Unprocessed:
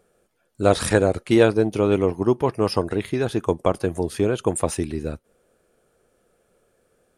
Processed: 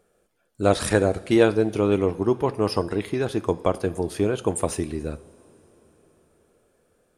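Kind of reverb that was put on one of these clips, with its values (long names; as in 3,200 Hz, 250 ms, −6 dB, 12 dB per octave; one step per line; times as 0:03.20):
coupled-rooms reverb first 0.52 s, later 4.9 s, from −18 dB, DRR 13.5 dB
level −2 dB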